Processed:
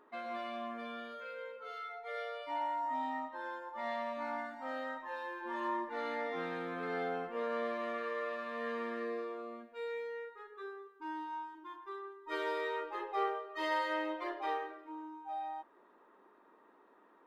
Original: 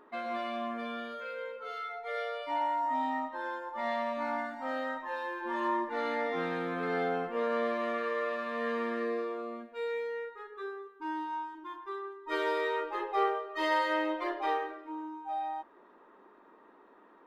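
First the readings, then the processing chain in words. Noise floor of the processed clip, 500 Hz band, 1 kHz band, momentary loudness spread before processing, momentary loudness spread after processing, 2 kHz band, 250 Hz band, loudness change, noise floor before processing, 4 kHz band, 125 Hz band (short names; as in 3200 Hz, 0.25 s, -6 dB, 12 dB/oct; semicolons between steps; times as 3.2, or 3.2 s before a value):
-65 dBFS, -5.5 dB, -5.0 dB, 10 LU, 10 LU, -5.0 dB, -6.5 dB, -5.5 dB, -59 dBFS, -5.0 dB, -7.5 dB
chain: low shelf 190 Hz -4.5 dB; gain -5 dB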